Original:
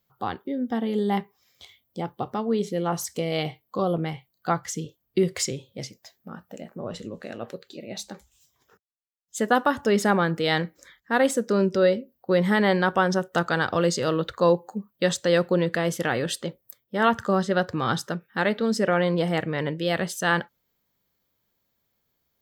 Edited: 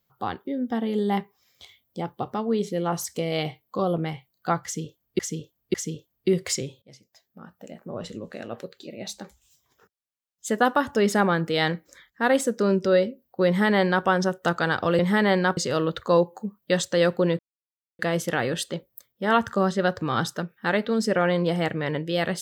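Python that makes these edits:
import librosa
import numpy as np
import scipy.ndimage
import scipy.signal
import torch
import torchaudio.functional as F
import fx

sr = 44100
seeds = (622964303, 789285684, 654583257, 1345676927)

y = fx.edit(x, sr, fx.repeat(start_s=4.64, length_s=0.55, count=3),
    fx.fade_in_from(start_s=5.72, length_s=1.2, floor_db=-20.0),
    fx.duplicate(start_s=12.37, length_s=0.58, to_s=13.89),
    fx.insert_silence(at_s=15.71, length_s=0.6), tone=tone)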